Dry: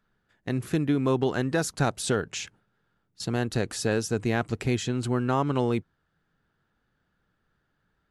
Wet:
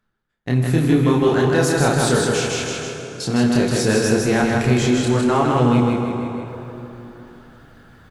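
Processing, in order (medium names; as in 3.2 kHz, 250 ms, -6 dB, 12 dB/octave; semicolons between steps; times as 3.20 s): gate with hold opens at -51 dBFS; chorus voices 2, 0.34 Hz, delay 28 ms, depth 3.9 ms; feedback delay 158 ms, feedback 33%, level -3 dB; reverse; upward compressor, threshold -32 dBFS; reverse; plate-style reverb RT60 3.5 s, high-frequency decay 0.65×, DRR 5 dB; in parallel at -6.5 dB: saturation -28 dBFS, distortion -9 dB; on the sum: trim +7.5 dB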